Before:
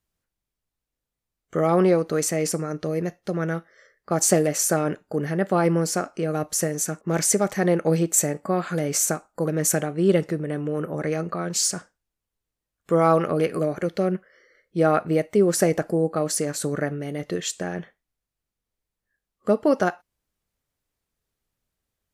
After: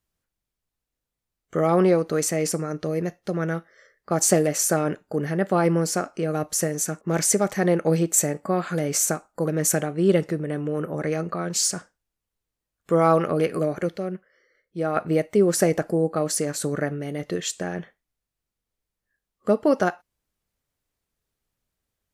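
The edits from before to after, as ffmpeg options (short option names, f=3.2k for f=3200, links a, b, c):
-filter_complex "[0:a]asplit=3[a][b][c];[a]atrim=end=13.972[d];[b]atrim=start=13.968:end=14.962,asetpts=PTS-STARTPTS,volume=-6.5dB[e];[c]atrim=start=14.958[f];[d][e]acrossfade=d=0.004:c1=hsin:c2=hsin[g];[g][f]acrossfade=d=0.004:c1=hsin:c2=hsin"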